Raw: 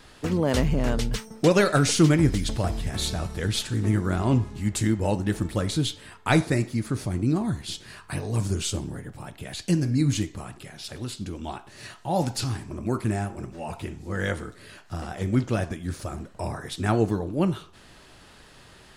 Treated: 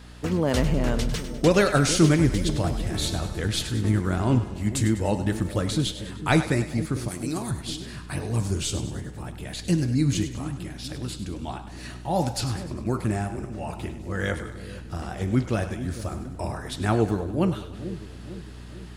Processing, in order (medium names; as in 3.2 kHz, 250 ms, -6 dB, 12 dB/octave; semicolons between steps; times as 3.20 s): hum 60 Hz, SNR 19 dB; 7.08–7.51 s: RIAA curve recording; two-band feedback delay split 520 Hz, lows 450 ms, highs 100 ms, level -11.5 dB